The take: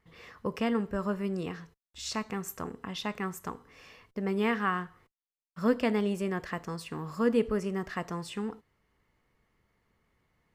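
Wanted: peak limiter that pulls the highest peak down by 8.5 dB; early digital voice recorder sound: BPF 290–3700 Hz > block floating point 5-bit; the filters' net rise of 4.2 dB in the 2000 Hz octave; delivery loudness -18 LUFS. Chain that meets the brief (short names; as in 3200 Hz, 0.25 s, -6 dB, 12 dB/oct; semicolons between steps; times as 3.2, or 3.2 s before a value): bell 2000 Hz +5.5 dB; limiter -21 dBFS; BPF 290–3700 Hz; block floating point 5-bit; gain +18 dB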